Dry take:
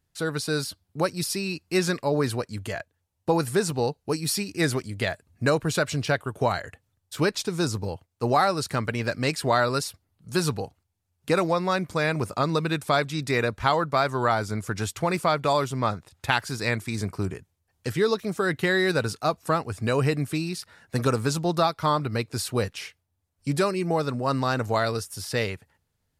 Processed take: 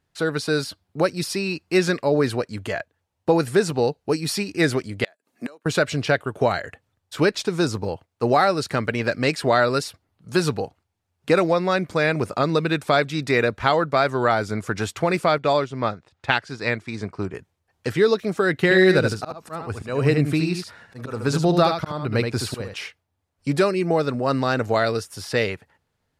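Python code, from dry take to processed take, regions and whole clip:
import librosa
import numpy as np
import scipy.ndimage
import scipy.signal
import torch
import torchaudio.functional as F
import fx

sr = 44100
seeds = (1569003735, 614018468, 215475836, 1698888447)

y = fx.chain(x, sr, fx.highpass(hz=230.0, slope=24),
    fx.high_shelf(hz=6100.0, db=10.5),
    fx.gate_flip(shuts_db=-24.0, range_db=-30), at=(5.04, 5.66))
y = fx.chain(y, sr, fx.lowpass(hz=6800.0, slope=12),
    fx.quant_float(bits=8),
    fx.upward_expand(threshold_db=-34.0, expansion=1.5), at=(15.38, 17.34))
y = fx.chain(y, sr, fx.low_shelf(hz=170.0, db=6.0),
    fx.auto_swell(attack_ms=301.0),
    fx.echo_single(ms=75, db=-6.0), at=(18.62, 22.74))
y = fx.dynamic_eq(y, sr, hz=1000.0, q=1.8, threshold_db=-39.0, ratio=4.0, max_db=-7)
y = fx.lowpass(y, sr, hz=2700.0, slope=6)
y = fx.low_shelf(y, sr, hz=170.0, db=-10.0)
y = y * 10.0 ** (7.5 / 20.0)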